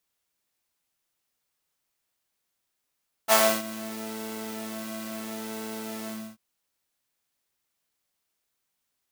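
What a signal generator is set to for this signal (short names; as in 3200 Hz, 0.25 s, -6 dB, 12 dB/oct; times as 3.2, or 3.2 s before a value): synth patch with pulse-width modulation A3, oscillator 2 saw, interval +19 st, detune 16 cents, oscillator 2 level -7 dB, sub -6.5 dB, noise -2 dB, filter highpass, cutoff 150 Hz, Q 1.7, filter envelope 2.5 oct, filter decay 0.36 s, attack 42 ms, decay 0.30 s, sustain -21 dB, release 0.29 s, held 2.80 s, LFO 0.74 Hz, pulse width 43%, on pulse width 7%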